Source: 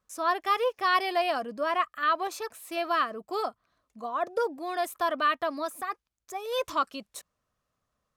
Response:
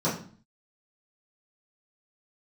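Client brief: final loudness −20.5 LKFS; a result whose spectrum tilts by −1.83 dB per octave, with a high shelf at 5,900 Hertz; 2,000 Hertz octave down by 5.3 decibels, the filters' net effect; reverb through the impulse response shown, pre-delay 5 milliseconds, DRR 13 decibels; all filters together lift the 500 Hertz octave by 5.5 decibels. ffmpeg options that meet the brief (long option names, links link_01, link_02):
-filter_complex "[0:a]equalizer=frequency=500:width_type=o:gain=7.5,equalizer=frequency=2000:width_type=o:gain=-8.5,highshelf=frequency=5900:gain=8,asplit=2[link_01][link_02];[1:a]atrim=start_sample=2205,adelay=5[link_03];[link_02][link_03]afir=irnorm=-1:irlink=0,volume=-24.5dB[link_04];[link_01][link_04]amix=inputs=2:normalize=0,volume=6.5dB"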